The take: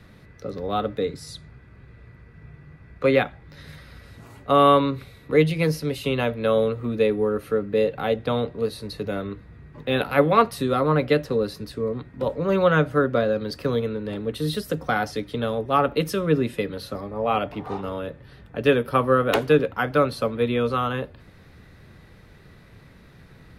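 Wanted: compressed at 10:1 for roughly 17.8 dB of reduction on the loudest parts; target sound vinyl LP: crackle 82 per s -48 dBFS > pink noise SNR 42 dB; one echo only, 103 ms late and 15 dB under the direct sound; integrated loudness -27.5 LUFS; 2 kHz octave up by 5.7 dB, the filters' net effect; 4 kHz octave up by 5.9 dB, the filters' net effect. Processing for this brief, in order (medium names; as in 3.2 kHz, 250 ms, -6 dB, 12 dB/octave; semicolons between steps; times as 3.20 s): peaking EQ 2 kHz +6.5 dB; peaking EQ 4 kHz +5 dB; compression 10:1, threshold -29 dBFS; delay 103 ms -15 dB; crackle 82 per s -48 dBFS; pink noise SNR 42 dB; trim +6.5 dB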